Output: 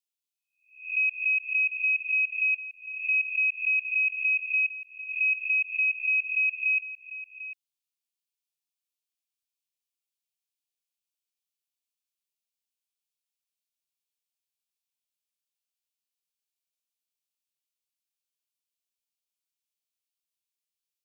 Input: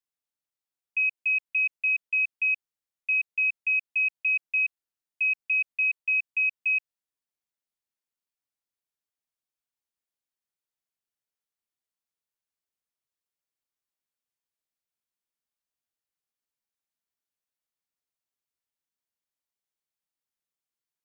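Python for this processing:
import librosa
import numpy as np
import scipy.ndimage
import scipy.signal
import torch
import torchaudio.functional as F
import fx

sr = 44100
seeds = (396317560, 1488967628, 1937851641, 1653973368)

p1 = fx.spec_swells(x, sr, rise_s=0.46)
p2 = scipy.signal.sosfilt(scipy.signal.butter(12, 2300.0, 'highpass', fs=sr, output='sos'), p1)
y = p2 + fx.echo_single(p2, sr, ms=746, db=-14.0, dry=0)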